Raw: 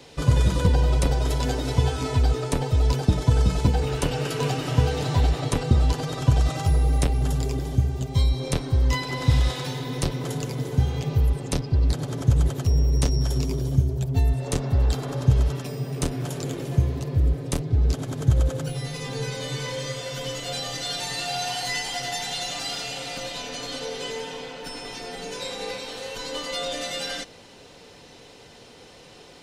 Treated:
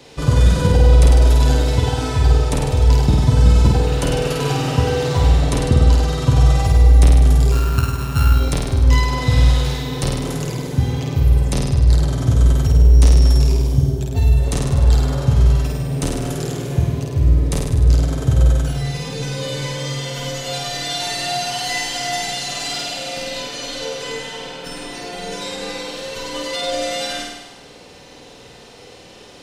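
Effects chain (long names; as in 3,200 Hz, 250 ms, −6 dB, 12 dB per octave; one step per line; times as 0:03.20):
0:07.52–0:08.34: samples sorted by size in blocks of 32 samples
flutter between parallel walls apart 8.7 metres, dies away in 1.1 s
level +2.5 dB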